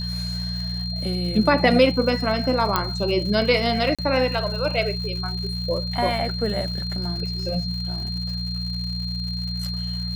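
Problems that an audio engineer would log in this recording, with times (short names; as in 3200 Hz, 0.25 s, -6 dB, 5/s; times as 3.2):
crackle 170/s -33 dBFS
hum 60 Hz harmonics 3 -29 dBFS
tone 4200 Hz -30 dBFS
2.76 pop -5 dBFS
3.95–3.99 gap 36 ms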